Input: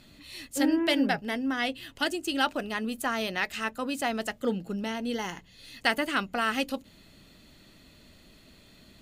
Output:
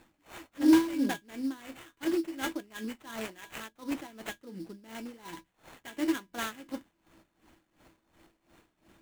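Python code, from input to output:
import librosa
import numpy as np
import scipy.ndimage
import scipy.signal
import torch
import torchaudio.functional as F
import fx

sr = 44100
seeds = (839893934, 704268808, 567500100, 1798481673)

p1 = fx.comb_fb(x, sr, f0_hz=330.0, decay_s=0.16, harmonics='odd', damping=0.0, mix_pct=90)
p2 = (np.mod(10.0 ** (27.0 / 20.0) * p1 + 1.0, 2.0) - 1.0) / 10.0 ** (27.0 / 20.0)
p3 = p1 + (p2 * 10.0 ** (-4.5 / 20.0))
p4 = fx.sample_hold(p3, sr, seeds[0], rate_hz=5000.0, jitter_pct=20)
p5 = fx.dynamic_eq(p4, sr, hz=290.0, q=0.76, threshold_db=-46.0, ratio=4.0, max_db=6)
p6 = p5 * 10.0 ** (-18 * (0.5 - 0.5 * np.cos(2.0 * np.pi * 2.8 * np.arange(len(p5)) / sr)) / 20.0)
y = p6 * 10.0 ** (6.0 / 20.0)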